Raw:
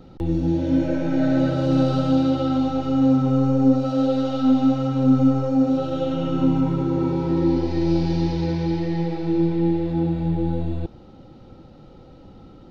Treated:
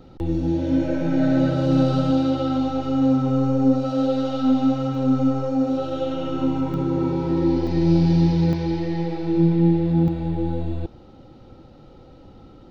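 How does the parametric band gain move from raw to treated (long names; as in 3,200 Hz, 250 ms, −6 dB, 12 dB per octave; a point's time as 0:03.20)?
parametric band 180 Hz 0.57 octaves
−3.5 dB
from 0:01.01 +3 dB
from 0:02.11 −6 dB
from 0:04.95 −12.5 dB
from 0:06.74 −1.5 dB
from 0:07.67 +7.5 dB
from 0:08.53 −2 dB
from 0:09.37 +7 dB
from 0:10.08 −4 dB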